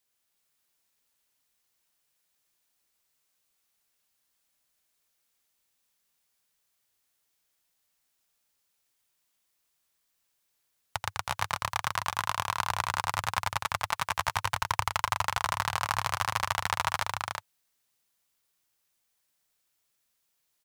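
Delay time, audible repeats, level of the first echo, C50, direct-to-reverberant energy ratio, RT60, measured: 84 ms, 3, −5.0 dB, no reverb audible, no reverb audible, no reverb audible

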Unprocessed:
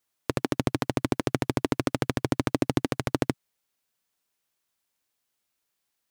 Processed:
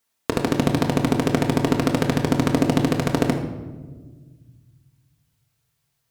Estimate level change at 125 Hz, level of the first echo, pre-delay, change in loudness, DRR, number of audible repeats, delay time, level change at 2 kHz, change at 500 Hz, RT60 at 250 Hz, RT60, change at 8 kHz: +8.0 dB, no echo audible, 4 ms, +7.0 dB, 2.0 dB, no echo audible, no echo audible, +5.5 dB, +6.5 dB, 2.3 s, 1.4 s, +5.5 dB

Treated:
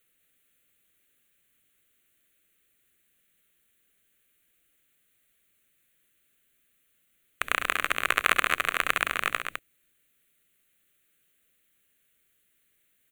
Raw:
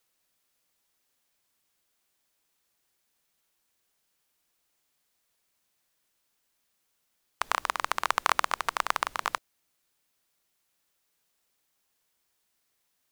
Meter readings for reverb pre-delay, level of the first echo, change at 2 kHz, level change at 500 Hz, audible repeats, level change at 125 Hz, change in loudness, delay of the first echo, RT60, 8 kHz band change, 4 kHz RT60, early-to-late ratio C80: no reverb audible, −10.5 dB, +7.0 dB, +2.0 dB, 3, can't be measured, +3.0 dB, 68 ms, no reverb audible, +1.5 dB, no reverb audible, no reverb audible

